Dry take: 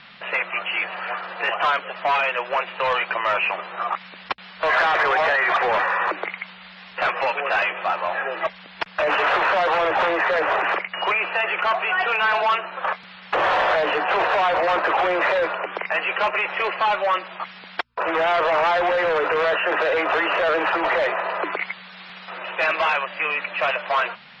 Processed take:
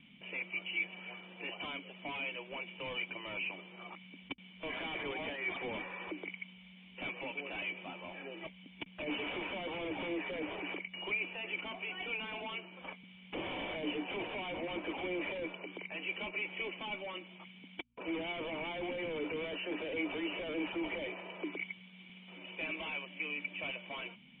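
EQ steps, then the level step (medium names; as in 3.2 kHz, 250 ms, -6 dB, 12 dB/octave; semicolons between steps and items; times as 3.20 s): cascade formant filter i; bass shelf 150 Hz +4.5 dB; peaking EQ 940 Hz +5.5 dB 0.38 oct; +1.0 dB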